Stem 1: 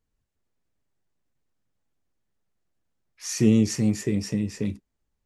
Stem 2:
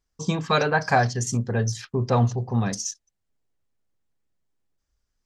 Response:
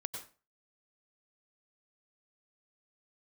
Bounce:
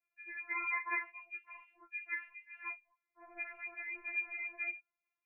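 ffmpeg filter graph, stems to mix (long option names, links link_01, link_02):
-filter_complex "[0:a]bandreject=frequency=119.4:width_type=h:width=4,bandreject=frequency=238.8:width_type=h:width=4,bandreject=frequency=358.2:width_type=h:width=4,bandreject=frequency=477.6:width_type=h:width=4,bandreject=frequency=597:width_type=h:width=4,bandreject=frequency=716.4:width_type=h:width=4,bandreject=frequency=835.8:width_type=h:width=4,bandreject=frequency=955.2:width_type=h:width=4,bandreject=frequency=1074.6:width_type=h:width=4,bandreject=frequency=1194:width_type=h:width=4,bandreject=frequency=1313.4:width_type=h:width=4,bandreject=frequency=1432.8:width_type=h:width=4,alimiter=limit=-18dB:level=0:latency=1:release=120,asoftclip=type=tanh:threshold=-26.5dB,volume=-1dB[link_01];[1:a]volume=-11dB[link_02];[link_01][link_02]amix=inputs=2:normalize=0,lowpass=frequency=2300:width_type=q:width=0.5098,lowpass=frequency=2300:width_type=q:width=0.6013,lowpass=frequency=2300:width_type=q:width=0.9,lowpass=frequency=2300:width_type=q:width=2.563,afreqshift=-2700,afftfilt=real='re*4*eq(mod(b,16),0)':imag='im*4*eq(mod(b,16),0)':win_size=2048:overlap=0.75"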